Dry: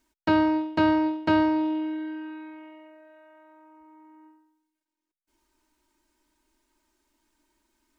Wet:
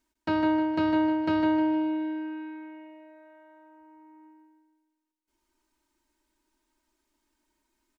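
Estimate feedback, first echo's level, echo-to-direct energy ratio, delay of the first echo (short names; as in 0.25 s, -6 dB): 42%, -5.0 dB, -4.0 dB, 0.154 s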